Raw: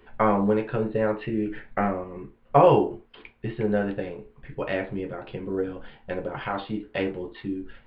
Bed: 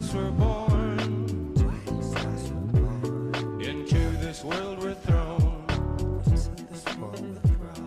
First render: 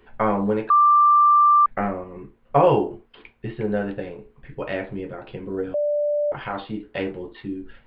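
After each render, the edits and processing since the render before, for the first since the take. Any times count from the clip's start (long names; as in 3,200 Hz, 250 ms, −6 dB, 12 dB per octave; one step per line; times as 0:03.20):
0:00.70–0:01.66: beep over 1,180 Hz −11.5 dBFS
0:05.74–0:06.32: beep over 589 Hz −19 dBFS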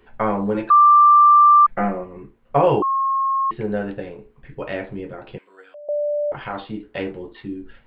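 0:00.54–0:02.06: comb filter 5.8 ms, depth 82%
0:02.82–0:03.51: beep over 1,080 Hz −17 dBFS
0:05.38–0:05.89: high-pass filter 1,500 Hz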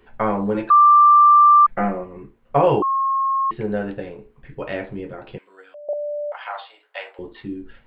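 0:05.93–0:07.19: Butterworth high-pass 620 Hz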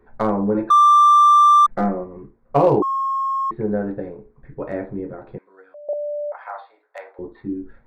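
adaptive Wiener filter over 15 samples
dynamic equaliser 290 Hz, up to +4 dB, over −36 dBFS, Q 1.1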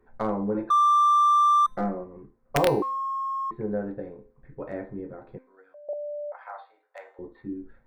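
wrap-around overflow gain 5.5 dB
tuned comb filter 260 Hz, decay 0.53 s, harmonics all, mix 60%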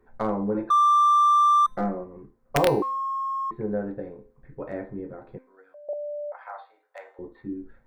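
level +1 dB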